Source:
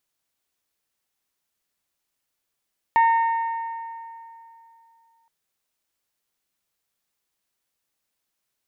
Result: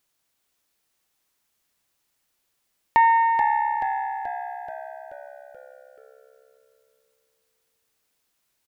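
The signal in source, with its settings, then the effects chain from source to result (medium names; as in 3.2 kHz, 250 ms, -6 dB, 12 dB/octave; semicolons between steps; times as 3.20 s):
metal hit bell, length 2.32 s, lowest mode 916 Hz, modes 5, decay 2.83 s, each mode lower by 10.5 dB, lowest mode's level -13 dB
in parallel at -2 dB: compression, threshold -29 dBFS; on the sum: frequency-shifting echo 431 ms, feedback 56%, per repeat -67 Hz, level -8 dB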